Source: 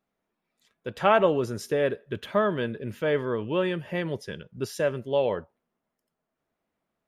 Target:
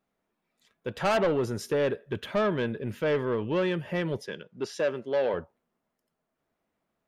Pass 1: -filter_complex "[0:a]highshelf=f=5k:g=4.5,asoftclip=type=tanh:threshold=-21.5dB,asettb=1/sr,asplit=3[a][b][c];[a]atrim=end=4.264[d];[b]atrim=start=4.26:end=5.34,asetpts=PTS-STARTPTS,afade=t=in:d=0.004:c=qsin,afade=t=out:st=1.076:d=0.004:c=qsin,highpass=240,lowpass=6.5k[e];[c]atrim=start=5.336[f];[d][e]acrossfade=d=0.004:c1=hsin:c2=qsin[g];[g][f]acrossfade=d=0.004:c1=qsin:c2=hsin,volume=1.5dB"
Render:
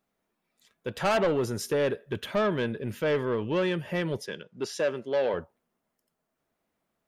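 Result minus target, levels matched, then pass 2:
8000 Hz band +4.5 dB
-filter_complex "[0:a]highshelf=f=5k:g=-3,asoftclip=type=tanh:threshold=-21.5dB,asettb=1/sr,asplit=3[a][b][c];[a]atrim=end=4.264[d];[b]atrim=start=4.26:end=5.34,asetpts=PTS-STARTPTS,afade=t=in:d=0.004:c=qsin,afade=t=out:st=1.076:d=0.004:c=qsin,highpass=240,lowpass=6.5k[e];[c]atrim=start=5.336[f];[d][e]acrossfade=d=0.004:c1=hsin:c2=qsin[g];[g][f]acrossfade=d=0.004:c1=qsin:c2=hsin,volume=1.5dB"

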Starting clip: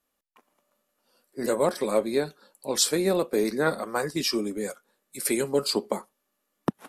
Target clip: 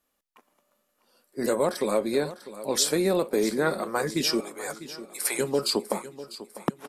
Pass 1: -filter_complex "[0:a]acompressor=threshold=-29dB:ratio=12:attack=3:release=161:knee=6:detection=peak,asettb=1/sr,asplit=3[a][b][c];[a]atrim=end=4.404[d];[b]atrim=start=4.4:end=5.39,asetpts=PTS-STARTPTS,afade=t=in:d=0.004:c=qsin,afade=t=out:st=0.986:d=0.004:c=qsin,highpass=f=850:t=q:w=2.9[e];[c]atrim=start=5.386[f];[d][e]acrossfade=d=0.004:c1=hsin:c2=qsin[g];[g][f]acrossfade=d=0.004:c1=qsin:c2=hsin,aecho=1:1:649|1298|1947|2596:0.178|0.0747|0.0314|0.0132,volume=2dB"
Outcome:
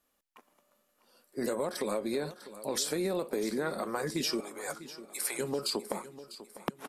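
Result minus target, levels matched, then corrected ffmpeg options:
compressor: peak gain reduction +10 dB
-filter_complex "[0:a]acompressor=threshold=-18dB:ratio=12:attack=3:release=161:knee=6:detection=peak,asettb=1/sr,asplit=3[a][b][c];[a]atrim=end=4.404[d];[b]atrim=start=4.4:end=5.39,asetpts=PTS-STARTPTS,afade=t=in:d=0.004:c=qsin,afade=t=out:st=0.986:d=0.004:c=qsin,highpass=f=850:t=q:w=2.9[e];[c]atrim=start=5.386[f];[d][e]acrossfade=d=0.004:c1=hsin:c2=qsin[g];[g][f]acrossfade=d=0.004:c1=qsin:c2=hsin,aecho=1:1:649|1298|1947|2596:0.178|0.0747|0.0314|0.0132,volume=2dB"

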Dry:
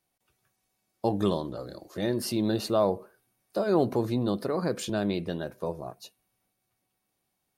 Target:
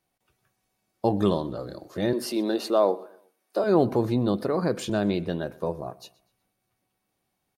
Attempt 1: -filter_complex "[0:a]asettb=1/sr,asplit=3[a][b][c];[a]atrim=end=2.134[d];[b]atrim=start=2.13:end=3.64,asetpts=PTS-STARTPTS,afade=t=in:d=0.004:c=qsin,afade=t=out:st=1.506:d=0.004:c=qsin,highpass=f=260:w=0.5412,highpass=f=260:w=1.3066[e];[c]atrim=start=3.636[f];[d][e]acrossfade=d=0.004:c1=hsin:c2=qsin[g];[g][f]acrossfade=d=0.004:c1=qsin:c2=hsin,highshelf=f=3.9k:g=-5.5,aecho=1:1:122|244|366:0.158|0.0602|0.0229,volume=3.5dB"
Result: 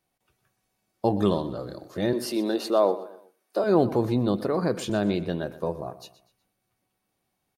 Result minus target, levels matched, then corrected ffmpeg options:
echo-to-direct +6.5 dB
-filter_complex "[0:a]asettb=1/sr,asplit=3[a][b][c];[a]atrim=end=2.134[d];[b]atrim=start=2.13:end=3.64,asetpts=PTS-STARTPTS,afade=t=in:d=0.004:c=qsin,afade=t=out:st=1.506:d=0.004:c=qsin,highpass=f=260:w=0.5412,highpass=f=260:w=1.3066[e];[c]atrim=start=3.636[f];[d][e]acrossfade=d=0.004:c1=hsin:c2=qsin[g];[g][f]acrossfade=d=0.004:c1=qsin:c2=hsin,highshelf=f=3.9k:g=-5.5,aecho=1:1:122|244|366:0.075|0.0285|0.0108,volume=3.5dB"

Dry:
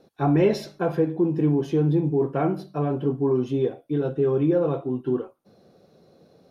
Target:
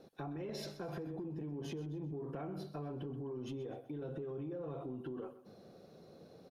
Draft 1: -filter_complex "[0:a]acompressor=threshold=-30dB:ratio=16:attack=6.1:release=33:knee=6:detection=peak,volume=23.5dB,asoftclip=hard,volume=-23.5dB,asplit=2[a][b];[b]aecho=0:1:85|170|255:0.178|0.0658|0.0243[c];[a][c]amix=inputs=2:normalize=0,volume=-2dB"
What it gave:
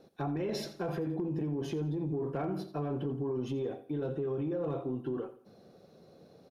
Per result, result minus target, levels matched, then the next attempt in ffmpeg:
compressor: peak gain reduction -9 dB; echo 43 ms early
-filter_complex "[0:a]acompressor=threshold=-39.5dB:ratio=16:attack=6.1:release=33:knee=6:detection=peak,volume=23.5dB,asoftclip=hard,volume=-23.5dB,asplit=2[a][b];[b]aecho=0:1:85|170|255:0.178|0.0658|0.0243[c];[a][c]amix=inputs=2:normalize=0,volume=-2dB"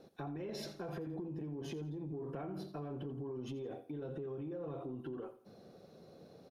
echo 43 ms early
-filter_complex "[0:a]acompressor=threshold=-39.5dB:ratio=16:attack=6.1:release=33:knee=6:detection=peak,volume=23.5dB,asoftclip=hard,volume=-23.5dB,asplit=2[a][b];[b]aecho=0:1:128|256|384:0.178|0.0658|0.0243[c];[a][c]amix=inputs=2:normalize=0,volume=-2dB"

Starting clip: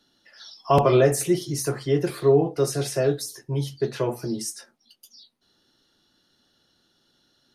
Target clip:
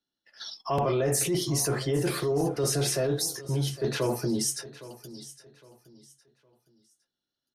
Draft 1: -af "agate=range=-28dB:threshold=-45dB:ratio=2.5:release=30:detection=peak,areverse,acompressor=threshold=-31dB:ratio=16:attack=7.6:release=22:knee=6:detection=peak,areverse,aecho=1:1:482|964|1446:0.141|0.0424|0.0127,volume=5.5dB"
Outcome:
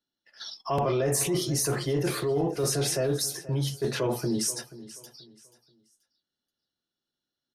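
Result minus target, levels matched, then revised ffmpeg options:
echo 0.329 s early
-af "agate=range=-28dB:threshold=-45dB:ratio=2.5:release=30:detection=peak,areverse,acompressor=threshold=-31dB:ratio=16:attack=7.6:release=22:knee=6:detection=peak,areverse,aecho=1:1:811|1622|2433:0.141|0.0424|0.0127,volume=5.5dB"

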